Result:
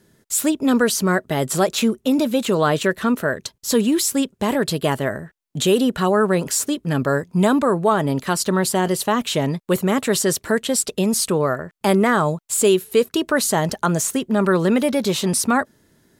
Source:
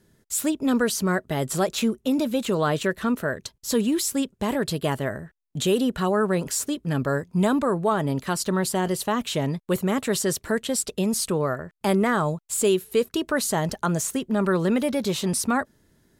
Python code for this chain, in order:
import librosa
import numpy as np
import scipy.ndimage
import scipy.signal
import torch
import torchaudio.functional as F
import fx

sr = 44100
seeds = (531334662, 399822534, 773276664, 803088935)

y = fx.low_shelf(x, sr, hz=70.0, db=-11.5)
y = y * librosa.db_to_amplitude(5.5)